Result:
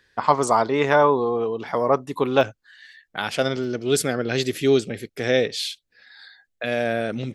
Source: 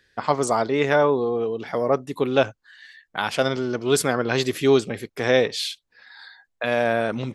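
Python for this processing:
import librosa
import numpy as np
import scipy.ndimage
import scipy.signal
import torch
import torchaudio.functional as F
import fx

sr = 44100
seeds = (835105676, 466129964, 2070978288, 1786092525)

y = fx.peak_eq(x, sr, hz=1000.0, db=fx.steps((0.0, 7.5), (2.41, -6.0), (3.64, -14.5)), octaves=0.59)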